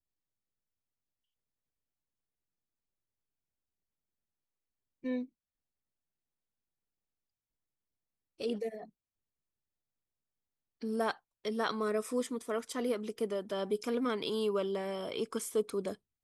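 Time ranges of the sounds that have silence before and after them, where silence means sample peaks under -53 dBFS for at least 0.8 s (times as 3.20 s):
5.03–5.26 s
8.40–8.89 s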